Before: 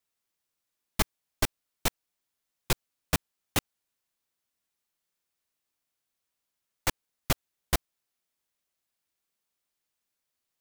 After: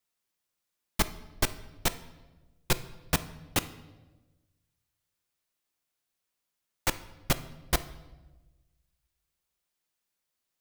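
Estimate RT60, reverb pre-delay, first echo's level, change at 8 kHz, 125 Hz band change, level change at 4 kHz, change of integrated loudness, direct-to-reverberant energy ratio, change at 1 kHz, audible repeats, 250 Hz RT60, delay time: 1.2 s, 6 ms, no echo audible, 0.0 dB, 0.0 dB, +0.5 dB, 0.0 dB, 11.5 dB, +0.5 dB, no echo audible, 1.4 s, no echo audible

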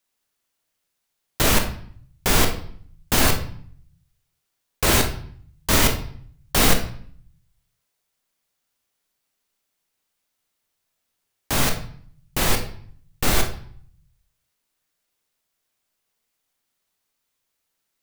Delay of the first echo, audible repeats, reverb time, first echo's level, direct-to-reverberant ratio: no echo audible, no echo audible, 0.55 s, no echo audible, 4.0 dB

